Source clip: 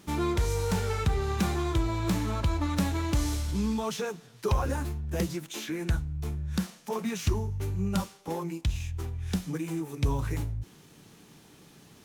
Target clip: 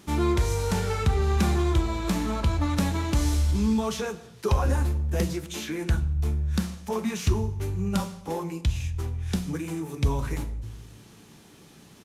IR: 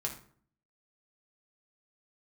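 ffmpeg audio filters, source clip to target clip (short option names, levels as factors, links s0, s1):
-filter_complex "[0:a]asplit=2[s0][s1];[1:a]atrim=start_sample=2205,asetrate=23814,aresample=44100[s2];[s1][s2]afir=irnorm=-1:irlink=0,volume=0.251[s3];[s0][s3]amix=inputs=2:normalize=0,aresample=32000,aresample=44100"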